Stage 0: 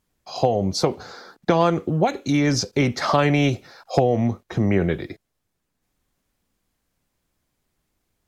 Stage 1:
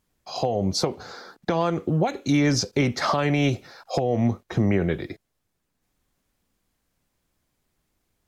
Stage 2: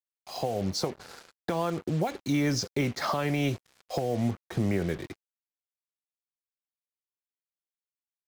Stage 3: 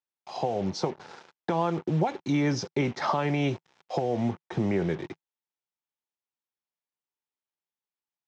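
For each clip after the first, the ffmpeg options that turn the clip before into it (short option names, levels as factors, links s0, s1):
-af "alimiter=limit=0.266:level=0:latency=1:release=269"
-af "acrusher=bits=5:mix=0:aa=0.5,volume=0.501"
-af "highpass=110,equalizer=f=160:t=q:w=4:g=4,equalizer=f=370:t=q:w=4:g=4,equalizer=f=880:t=q:w=4:g=8,equalizer=f=4500:t=q:w=4:g=-6,lowpass=f=5800:w=0.5412,lowpass=f=5800:w=1.3066"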